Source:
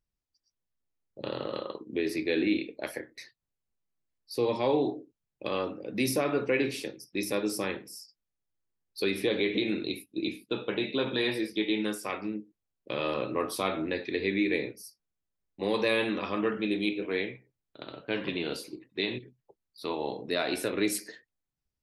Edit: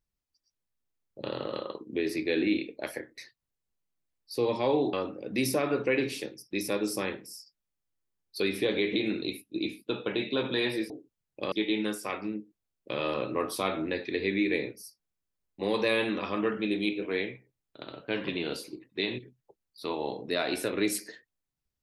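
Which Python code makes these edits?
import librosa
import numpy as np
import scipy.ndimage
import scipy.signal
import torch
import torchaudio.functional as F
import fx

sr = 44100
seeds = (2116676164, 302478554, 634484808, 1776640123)

y = fx.edit(x, sr, fx.move(start_s=4.93, length_s=0.62, to_s=11.52), tone=tone)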